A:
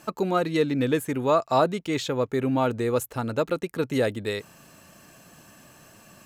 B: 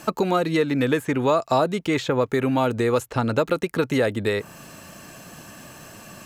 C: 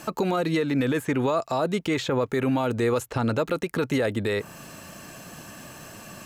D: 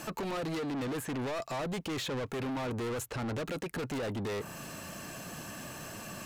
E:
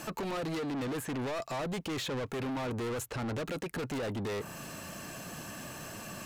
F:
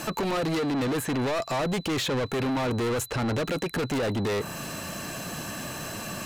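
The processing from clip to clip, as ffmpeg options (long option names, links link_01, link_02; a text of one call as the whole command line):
ffmpeg -i in.wav -filter_complex "[0:a]acrossover=split=730|2200|7100[link_01][link_02][link_03][link_04];[link_01]acompressor=threshold=-30dB:ratio=4[link_05];[link_02]acompressor=threshold=-34dB:ratio=4[link_06];[link_03]acompressor=threshold=-46dB:ratio=4[link_07];[link_04]acompressor=threshold=-58dB:ratio=4[link_08];[link_05][link_06][link_07][link_08]amix=inputs=4:normalize=0,volume=9dB" out.wav
ffmpeg -i in.wav -af "alimiter=limit=-15.5dB:level=0:latency=1:release=35" out.wav
ffmpeg -i in.wav -af "asoftclip=type=tanh:threshold=-33dB" out.wav
ffmpeg -i in.wav -af anull out.wav
ffmpeg -i in.wav -af "aeval=exprs='val(0)+0.00158*sin(2*PI*4000*n/s)':channel_layout=same,volume=8dB" out.wav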